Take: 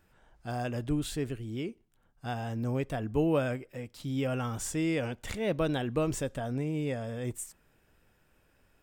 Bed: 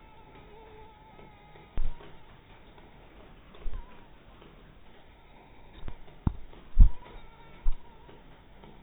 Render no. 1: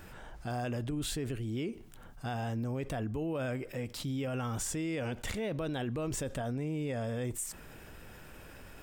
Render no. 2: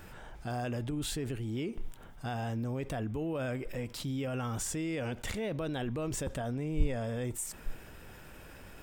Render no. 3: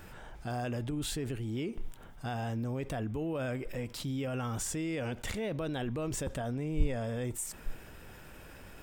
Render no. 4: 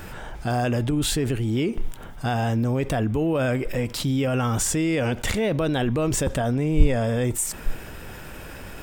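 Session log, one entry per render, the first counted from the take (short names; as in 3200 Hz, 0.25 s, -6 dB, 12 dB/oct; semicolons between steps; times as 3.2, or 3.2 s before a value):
limiter -29 dBFS, peak gain reduction 11 dB; fast leveller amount 50%
add bed -12 dB
nothing audible
gain +12 dB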